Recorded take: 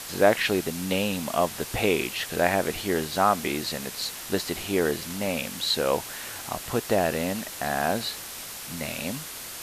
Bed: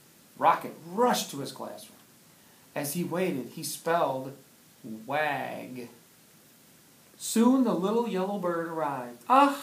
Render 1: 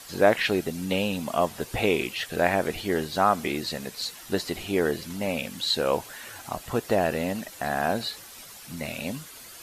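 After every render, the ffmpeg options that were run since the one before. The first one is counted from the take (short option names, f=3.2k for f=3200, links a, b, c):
-af "afftdn=nr=10:nf=-39"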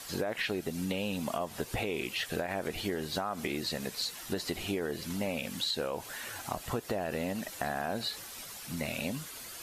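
-af "alimiter=limit=-15.5dB:level=0:latency=1:release=73,acompressor=threshold=-30dB:ratio=6"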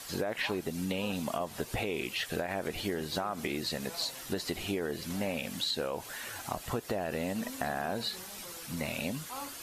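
-filter_complex "[1:a]volume=-22.5dB[a];[0:a][a]amix=inputs=2:normalize=0"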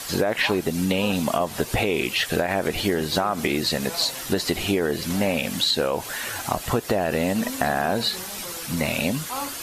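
-af "volume=11dB"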